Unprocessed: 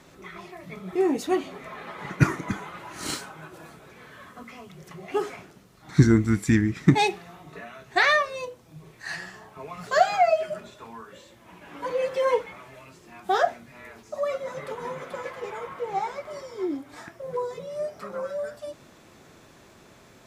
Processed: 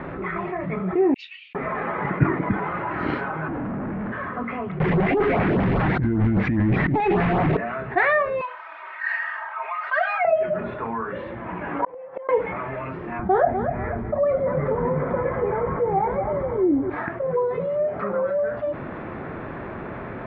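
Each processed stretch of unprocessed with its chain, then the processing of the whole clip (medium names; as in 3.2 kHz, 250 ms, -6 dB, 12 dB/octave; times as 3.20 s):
1.14–1.55 s: Chebyshev high-pass 2.6 kHz, order 5 + doubling 27 ms -8 dB + upward expansion 2.5:1, over -51 dBFS
3.48–4.12 s: FFT filter 160 Hz 0 dB, 250 Hz +10 dB, 420 Hz -11 dB, 3.1 kHz -27 dB + frequency shift -37 Hz + overdrive pedal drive 36 dB, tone 3.1 kHz, clips at -37 dBFS
4.80–7.57 s: jump at every zero crossing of -21.5 dBFS + LFO notch saw up 5 Hz 250–3100 Hz + compressor with a negative ratio -24 dBFS
8.41–10.25 s: high-pass 1 kHz 24 dB/octave + comb 3.2 ms, depth 94%
11.79–12.29 s: peaking EQ 780 Hz +13 dB 1.1 oct + inverted gate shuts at -17 dBFS, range -42 dB
13.19–16.90 s: RIAA curve playback + band-stop 2.7 kHz, Q 6.5 + feedback delay 247 ms, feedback 24%, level -14 dB
whole clip: inverse Chebyshev low-pass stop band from 7.9 kHz, stop band 70 dB; dynamic bell 1.3 kHz, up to -6 dB, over -41 dBFS, Q 1.5; level flattener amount 50%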